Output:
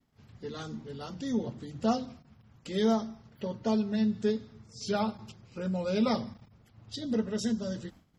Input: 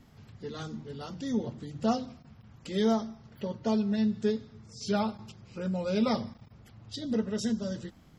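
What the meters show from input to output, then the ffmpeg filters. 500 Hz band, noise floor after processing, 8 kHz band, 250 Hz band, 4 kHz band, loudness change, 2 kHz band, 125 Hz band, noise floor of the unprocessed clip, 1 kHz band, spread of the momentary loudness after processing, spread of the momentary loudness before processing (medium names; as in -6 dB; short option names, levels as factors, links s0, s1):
0.0 dB, -62 dBFS, no reading, -0.5 dB, 0.0 dB, -0.5 dB, 0.0 dB, -1.0 dB, -56 dBFS, 0.0 dB, 15 LU, 15 LU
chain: -af "agate=range=0.0224:threshold=0.00447:ratio=3:detection=peak,bandreject=f=50:t=h:w=6,bandreject=f=100:t=h:w=6,bandreject=f=150:t=h:w=6,bandreject=f=200:t=h:w=6"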